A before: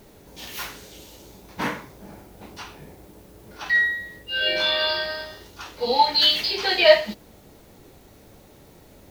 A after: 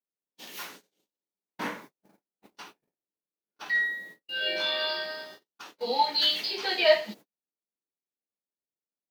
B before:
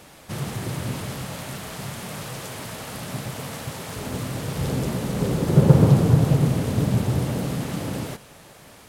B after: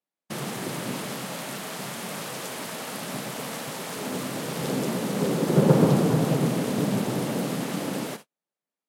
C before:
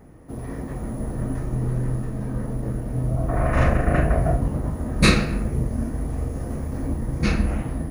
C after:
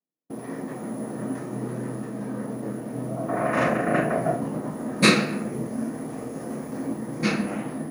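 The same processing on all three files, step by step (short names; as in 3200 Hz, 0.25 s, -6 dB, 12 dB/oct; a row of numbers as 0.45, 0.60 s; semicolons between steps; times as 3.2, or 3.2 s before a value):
HPF 180 Hz 24 dB/oct; gate -40 dBFS, range -47 dB; match loudness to -27 LUFS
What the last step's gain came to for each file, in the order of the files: -6.5, +1.0, +1.0 dB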